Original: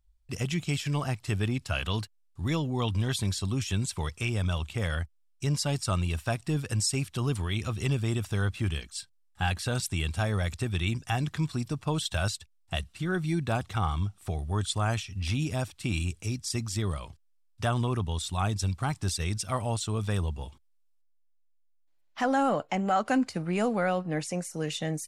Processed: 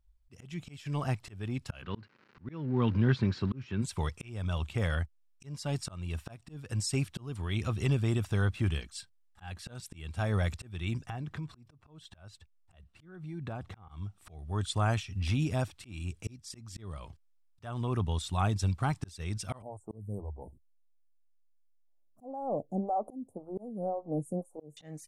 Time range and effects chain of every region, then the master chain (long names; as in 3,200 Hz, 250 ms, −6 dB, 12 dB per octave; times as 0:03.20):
0:01.81–0:03.81: mu-law and A-law mismatch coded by mu + surface crackle 330 per second −38 dBFS + loudspeaker in its box 110–4,100 Hz, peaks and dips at 130 Hz +6 dB, 230 Hz +7 dB, 370 Hz +5 dB, 700 Hz −7 dB, 1,500 Hz +5 dB, 3,400 Hz −9 dB
0:11.06–0:13.89: high-shelf EQ 2,900 Hz −9.5 dB + downward compressor 12 to 1, threshold −34 dBFS
0:19.62–0:24.77: inverse Chebyshev band-stop filter 1,900–4,700 Hz, stop band 60 dB + parametric band 1,400 Hz −6 dB 0.61 octaves + phaser with staggered stages 1.9 Hz
whole clip: high-shelf EQ 3,000 Hz −7 dB; volume swells 427 ms